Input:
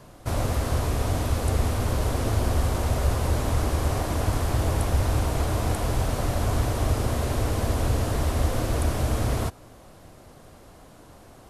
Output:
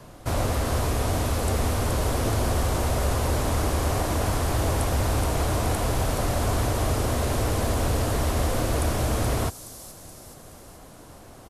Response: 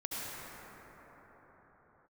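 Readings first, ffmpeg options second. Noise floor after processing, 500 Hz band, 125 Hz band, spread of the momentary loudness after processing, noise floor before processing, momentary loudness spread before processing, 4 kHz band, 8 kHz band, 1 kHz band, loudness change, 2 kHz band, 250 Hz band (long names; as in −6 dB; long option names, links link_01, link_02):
−46 dBFS, +2.0 dB, −1.0 dB, 5 LU, −50 dBFS, 2 LU, +3.0 dB, +4.0 dB, +2.5 dB, +0.5 dB, +2.5 dB, +1.0 dB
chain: -filter_complex "[0:a]acrossover=split=290|4600[link_01][link_02][link_03];[link_01]asoftclip=type=tanh:threshold=-23dB[link_04];[link_03]aecho=1:1:424|848|1272|1696|2120|2544|2968:0.596|0.322|0.174|0.0938|0.0506|0.0274|0.0148[link_05];[link_04][link_02][link_05]amix=inputs=3:normalize=0,volume=2.5dB"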